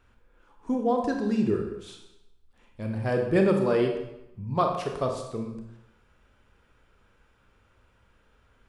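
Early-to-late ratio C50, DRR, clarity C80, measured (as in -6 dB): 5.0 dB, 2.5 dB, 7.5 dB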